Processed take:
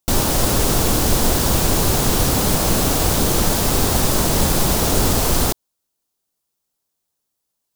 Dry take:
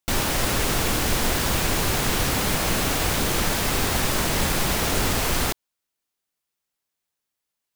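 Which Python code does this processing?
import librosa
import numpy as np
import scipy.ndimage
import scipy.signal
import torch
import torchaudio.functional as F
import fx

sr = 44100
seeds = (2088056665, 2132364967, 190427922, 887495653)

y = fx.peak_eq(x, sr, hz=2100.0, db=-10.0, octaves=1.5)
y = y * 10.0 ** (7.0 / 20.0)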